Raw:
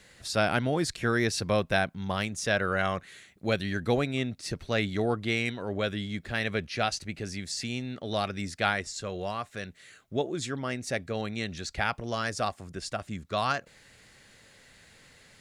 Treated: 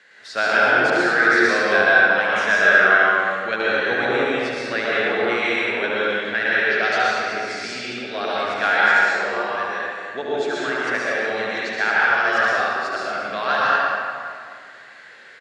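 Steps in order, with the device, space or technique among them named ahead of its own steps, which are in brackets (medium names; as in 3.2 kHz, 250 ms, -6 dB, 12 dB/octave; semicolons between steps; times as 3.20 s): station announcement (band-pass 380–4600 Hz; peaking EQ 1.6 kHz +11 dB 0.55 oct; loudspeakers at several distances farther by 25 m -5 dB, 78 m -11 dB; reverberation RT60 2.1 s, pre-delay 107 ms, DRR -7 dB)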